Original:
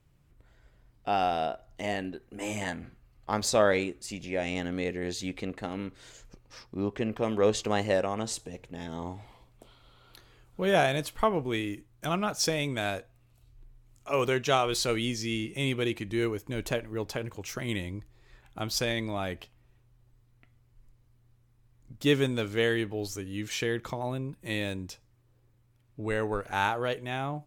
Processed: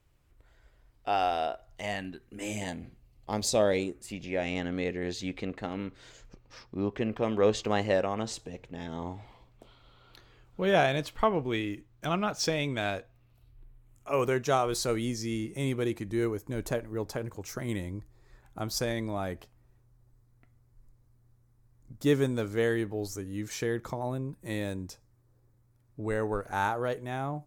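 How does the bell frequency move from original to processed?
bell -11 dB 1 oct
1.54 s 170 Hz
2.67 s 1400 Hz
3.77 s 1400 Hz
4.23 s 11000 Hz
12.97 s 11000 Hz
14.5 s 2900 Hz

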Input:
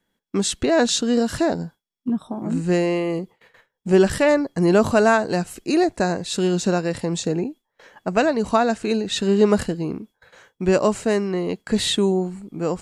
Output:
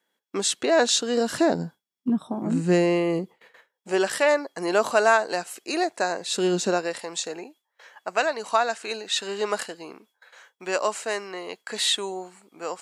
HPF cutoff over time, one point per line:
1.11 s 420 Hz
1.59 s 140 Hz
3.18 s 140 Hz
3.89 s 580 Hz
6.11 s 580 Hz
6.55 s 240 Hz
7.05 s 760 Hz

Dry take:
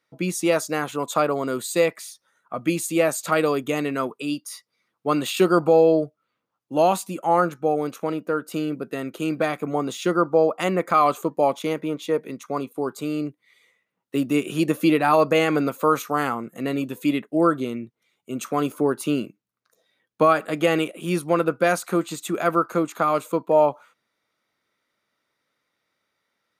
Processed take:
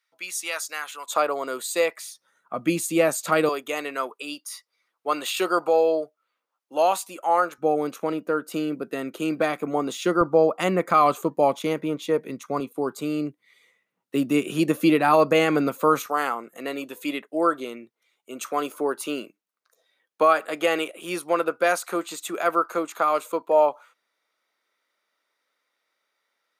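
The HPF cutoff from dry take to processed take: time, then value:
1400 Hz
from 1.09 s 490 Hz
from 2.07 s 140 Hz
from 3.49 s 550 Hz
from 7.58 s 190 Hz
from 10.21 s 51 Hz
from 12.6 s 130 Hz
from 16.06 s 440 Hz

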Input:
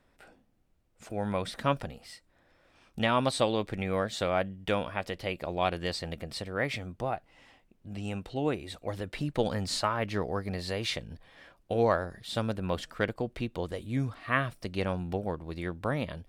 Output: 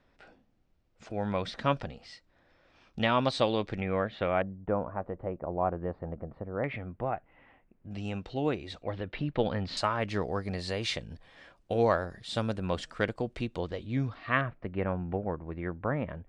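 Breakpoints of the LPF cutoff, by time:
LPF 24 dB/oct
6000 Hz
from 3.8 s 2800 Hz
from 4.42 s 1200 Hz
from 6.64 s 2300 Hz
from 7.91 s 6200 Hz
from 8.83 s 3700 Hz
from 9.77 s 8700 Hz
from 13.59 s 5300 Hz
from 14.41 s 2100 Hz

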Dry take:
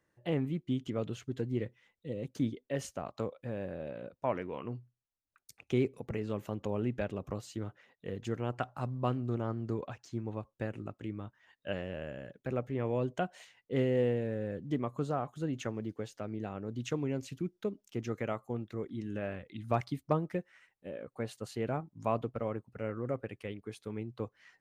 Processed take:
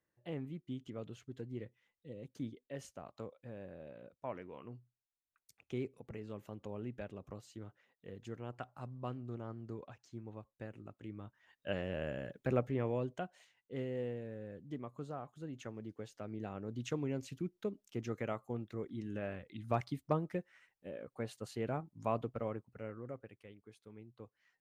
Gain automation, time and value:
10.82 s -10 dB
12.07 s +2 dB
12.58 s +2 dB
13.38 s -10.5 dB
15.49 s -10.5 dB
16.52 s -3.5 dB
22.46 s -3.5 dB
23.47 s -14.5 dB

